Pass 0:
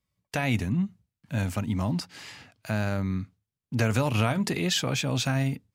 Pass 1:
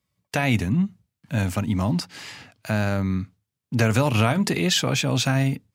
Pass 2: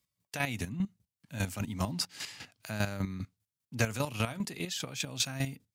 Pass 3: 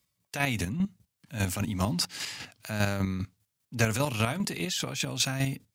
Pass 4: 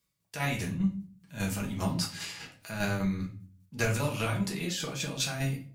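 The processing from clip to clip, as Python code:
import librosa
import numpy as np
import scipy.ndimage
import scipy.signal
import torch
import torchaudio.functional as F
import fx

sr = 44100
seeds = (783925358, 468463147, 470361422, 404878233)

y1 = scipy.signal.sosfilt(scipy.signal.butter(2, 71.0, 'highpass', fs=sr, output='sos'), x)
y1 = y1 * librosa.db_to_amplitude(5.0)
y2 = fx.high_shelf(y1, sr, hz=3100.0, db=10.5)
y2 = fx.rider(y2, sr, range_db=5, speed_s=0.5)
y2 = fx.chopper(y2, sr, hz=5.0, depth_pct=65, duty_pct=25)
y2 = y2 * librosa.db_to_amplitude(-9.0)
y3 = fx.transient(y2, sr, attack_db=-3, sustain_db=4)
y3 = y3 * librosa.db_to_amplitude(5.5)
y4 = fx.room_shoebox(y3, sr, seeds[0], volume_m3=31.0, walls='mixed', distance_m=0.66)
y4 = y4 * librosa.db_to_amplitude(-6.5)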